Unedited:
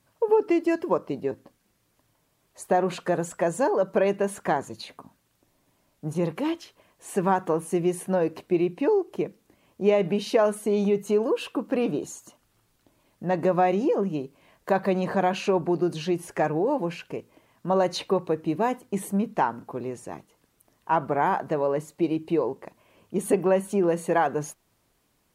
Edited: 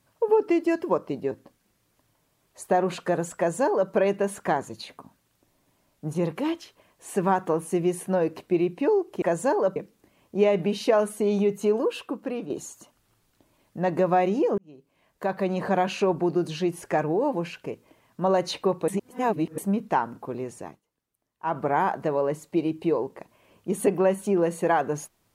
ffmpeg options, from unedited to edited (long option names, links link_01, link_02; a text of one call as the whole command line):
ffmpeg -i in.wav -filter_complex "[0:a]asplit=9[link_01][link_02][link_03][link_04][link_05][link_06][link_07][link_08][link_09];[link_01]atrim=end=9.222[link_10];[link_02]atrim=start=3.368:end=3.912[link_11];[link_03]atrim=start=9.218:end=11.96,asetpts=PTS-STARTPTS,afade=type=out:start_time=2.052:duration=0.69:silence=0.316228[link_12];[link_04]atrim=start=11.96:end=14.04,asetpts=PTS-STARTPTS,afade=type=in:duration=0.004:curve=hsin:silence=0.316228,afade=type=out:start_time=2.076:duration=0.004:curve=hsin[link_13];[link_05]atrim=start=14.04:end=18.342,asetpts=PTS-STARTPTS,afade=type=in:duration=1.13[link_14];[link_06]atrim=start=18.338:end=19.042,asetpts=PTS-STARTPTS,areverse[link_15];[link_07]atrim=start=19.038:end=20.28,asetpts=PTS-STARTPTS,afade=type=out:start_time=1.032:duration=0.21:silence=0.141254[link_16];[link_08]atrim=start=20.28:end=20.84,asetpts=PTS-STARTPTS,volume=-17dB[link_17];[link_09]atrim=start=20.84,asetpts=PTS-STARTPTS,afade=type=in:duration=0.21:silence=0.141254[link_18];[link_10][link_11]acrossfade=duration=0.004:curve1=hsin:curve2=hsin[link_19];[link_12][link_13][link_14]concat=n=3:v=0:a=1[link_20];[link_19][link_20]acrossfade=duration=0.004:curve1=hsin:curve2=hsin[link_21];[link_21][link_15]acrossfade=duration=0.004:curve1=hsin:curve2=hsin[link_22];[link_16][link_17][link_18]concat=n=3:v=0:a=1[link_23];[link_22][link_23]acrossfade=duration=0.004:curve1=hsin:curve2=hsin" out.wav